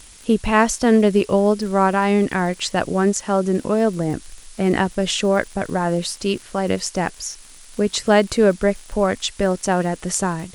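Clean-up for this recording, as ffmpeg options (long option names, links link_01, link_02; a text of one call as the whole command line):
ffmpeg -i in.wav -af "adeclick=threshold=4,afftdn=noise_reduction=21:noise_floor=-43" out.wav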